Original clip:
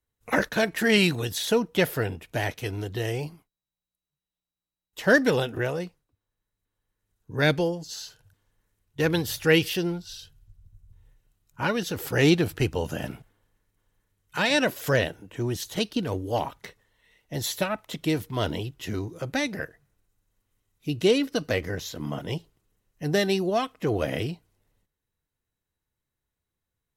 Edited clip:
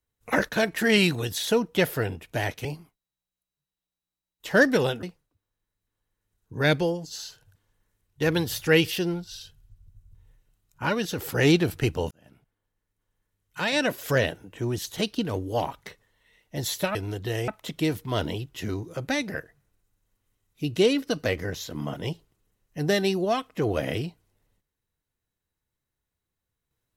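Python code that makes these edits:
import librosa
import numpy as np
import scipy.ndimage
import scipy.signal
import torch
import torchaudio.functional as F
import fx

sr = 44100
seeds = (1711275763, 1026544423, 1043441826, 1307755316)

y = fx.edit(x, sr, fx.move(start_s=2.65, length_s=0.53, to_s=17.73),
    fx.cut(start_s=5.56, length_s=0.25),
    fx.fade_in_span(start_s=12.89, length_s=2.09), tone=tone)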